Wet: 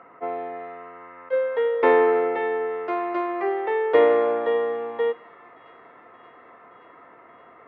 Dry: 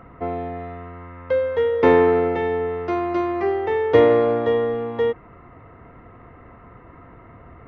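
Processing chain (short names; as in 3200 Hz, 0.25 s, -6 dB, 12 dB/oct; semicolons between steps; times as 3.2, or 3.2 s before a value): BPF 460–2800 Hz; thin delay 0.575 s, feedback 77%, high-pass 1600 Hz, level -22.5 dB; on a send at -18.5 dB: reverb RT60 0.90 s, pre-delay 3 ms; on the sum: attack slew limiter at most 510 dB/s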